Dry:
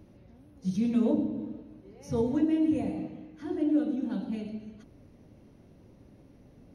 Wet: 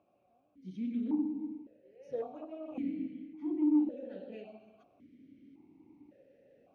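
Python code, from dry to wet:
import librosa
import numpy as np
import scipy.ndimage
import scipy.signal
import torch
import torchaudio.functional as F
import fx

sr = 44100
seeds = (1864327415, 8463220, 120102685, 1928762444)

y = fx.rider(x, sr, range_db=4, speed_s=0.5)
y = fx.tube_stage(y, sr, drive_db=24.0, bias=0.5)
y = fx.vowel_held(y, sr, hz=1.8)
y = y * librosa.db_to_amplitude(4.5)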